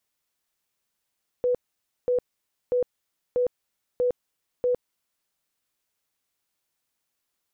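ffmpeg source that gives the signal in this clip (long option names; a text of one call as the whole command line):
ffmpeg -f lavfi -i "aevalsrc='0.106*sin(2*PI*494*mod(t,0.64))*lt(mod(t,0.64),53/494)':duration=3.84:sample_rate=44100" out.wav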